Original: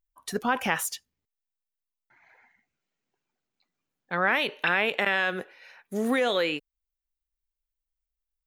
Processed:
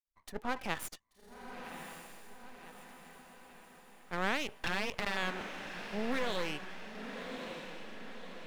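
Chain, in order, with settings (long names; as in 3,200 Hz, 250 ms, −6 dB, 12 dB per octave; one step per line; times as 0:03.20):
adaptive Wiener filter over 9 samples
0:04.52–0:05.17: frequency shifter +20 Hz
half-wave rectification
feedback delay with all-pass diffusion 1,129 ms, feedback 55%, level −7.5 dB
level −6.5 dB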